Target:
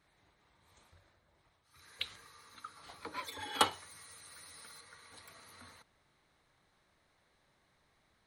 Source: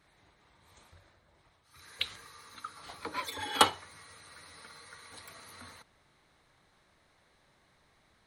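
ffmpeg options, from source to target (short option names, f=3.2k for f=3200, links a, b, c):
-filter_complex "[0:a]asettb=1/sr,asplit=3[a][b][c];[a]atrim=end=3.714[d];[b]atrim=start=3.71:end=4.81,asetpts=PTS-STARTPTS,afade=t=in:d=0.004:c=qsin,afade=t=out:st=1.096:d=0.004:c=qsin,aemphasis=mode=production:type=50kf[e];[c]atrim=start=4.806[f];[d][e]acrossfade=d=0.004:c1=hsin:c2=qsin[g];[g][f]acrossfade=d=0.004:c1=qsin:c2=hsin,volume=-5.5dB"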